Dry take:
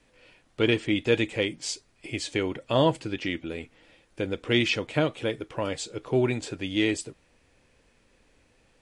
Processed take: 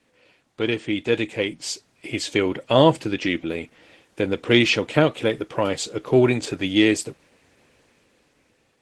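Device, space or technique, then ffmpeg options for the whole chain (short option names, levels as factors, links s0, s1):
video call: -af "highpass=110,dynaudnorm=f=690:g=5:m=5.62" -ar 48000 -c:a libopus -b:a 16k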